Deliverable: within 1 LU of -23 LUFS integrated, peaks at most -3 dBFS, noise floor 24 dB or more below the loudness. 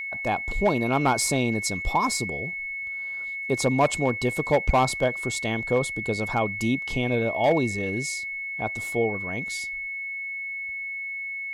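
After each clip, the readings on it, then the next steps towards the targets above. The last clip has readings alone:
clipped samples 0.3%; clipping level -13.5 dBFS; steady tone 2.2 kHz; tone level -30 dBFS; loudness -25.5 LUFS; peak level -13.5 dBFS; loudness target -23.0 LUFS
-> clip repair -13.5 dBFS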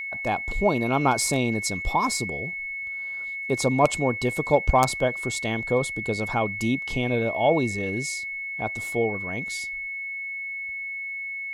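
clipped samples 0.0%; steady tone 2.2 kHz; tone level -30 dBFS
-> band-stop 2.2 kHz, Q 30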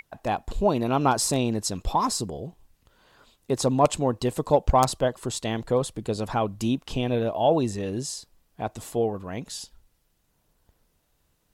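steady tone not found; loudness -26.0 LUFS; peak level -4.0 dBFS; loudness target -23.0 LUFS
-> trim +3 dB; peak limiter -3 dBFS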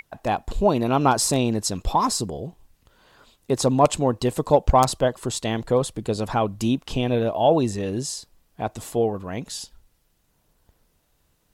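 loudness -23.0 LUFS; peak level -3.0 dBFS; noise floor -67 dBFS

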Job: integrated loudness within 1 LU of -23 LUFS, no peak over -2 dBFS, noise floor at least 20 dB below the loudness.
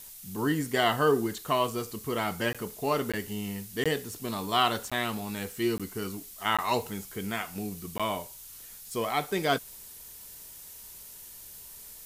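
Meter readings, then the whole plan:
dropouts 7; longest dropout 16 ms; noise floor -47 dBFS; noise floor target -50 dBFS; loudness -30.0 LUFS; peak level -10.0 dBFS; loudness target -23.0 LUFS
-> interpolate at 2.53/3.12/3.84/4.90/5.78/6.57/7.98 s, 16 ms; noise print and reduce 6 dB; trim +7 dB

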